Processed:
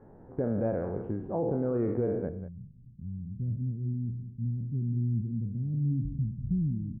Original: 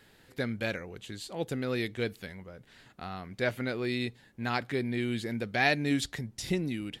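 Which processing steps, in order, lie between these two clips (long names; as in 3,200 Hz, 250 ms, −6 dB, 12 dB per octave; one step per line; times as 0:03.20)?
peak hold with a decay on every bin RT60 0.61 s
inverse Chebyshev low-pass filter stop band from 4,000 Hz, stop band 70 dB, from 0:02.28 stop band from 790 Hz
brickwall limiter −30 dBFS, peak gain reduction 9 dB
single-tap delay 191 ms −12.5 dB
level +8.5 dB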